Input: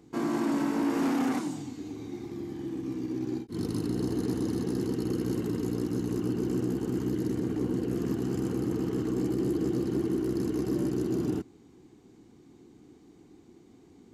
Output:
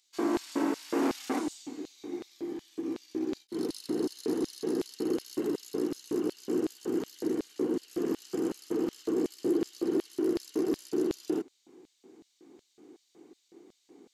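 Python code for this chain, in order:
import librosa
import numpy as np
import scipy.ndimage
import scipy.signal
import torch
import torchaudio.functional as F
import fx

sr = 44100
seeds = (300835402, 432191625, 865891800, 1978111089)

y = fx.filter_lfo_highpass(x, sr, shape='square', hz=2.7, low_hz=370.0, high_hz=3900.0, q=1.6)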